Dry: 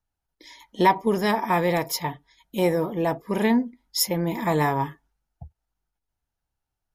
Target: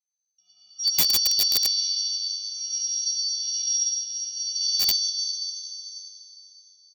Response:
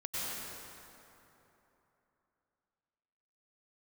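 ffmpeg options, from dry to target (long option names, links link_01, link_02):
-filter_complex "[0:a]firequalizer=gain_entry='entry(210,0);entry(700,-21);entry(1000,6);entry(2400,-21)':delay=0.05:min_phase=1[link_01];[1:a]atrim=start_sample=2205[link_02];[link_01][link_02]afir=irnorm=-1:irlink=0,afftfilt=real='hypot(re,im)*cos(PI*b)':imag='0':win_size=512:overlap=0.75,lowpass=frequency=3300:width_type=q:width=0.5098,lowpass=frequency=3300:width_type=q:width=0.6013,lowpass=frequency=3300:width_type=q:width=0.9,lowpass=frequency=3300:width_type=q:width=2.563,afreqshift=-3900,asplit=5[link_03][link_04][link_05][link_06][link_07];[link_04]adelay=140,afreqshift=-68,volume=-19dB[link_08];[link_05]adelay=280,afreqshift=-136,volume=-25.6dB[link_09];[link_06]adelay=420,afreqshift=-204,volume=-32.1dB[link_10];[link_07]adelay=560,afreqshift=-272,volume=-38.7dB[link_11];[link_03][link_08][link_09][link_10][link_11]amix=inputs=5:normalize=0,asetrate=70004,aresample=44100,atempo=0.629961,aeval=exprs='(mod(5.96*val(0)+1,2)-1)/5.96':channel_layout=same,equalizer=frequency=1600:width=0.71:gain=-6.5,volume=2.5dB"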